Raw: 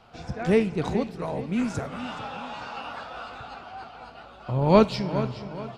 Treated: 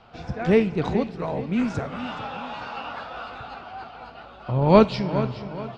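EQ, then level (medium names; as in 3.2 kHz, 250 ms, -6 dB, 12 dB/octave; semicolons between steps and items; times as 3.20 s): low-pass 4.7 kHz 12 dB/octave; +2.5 dB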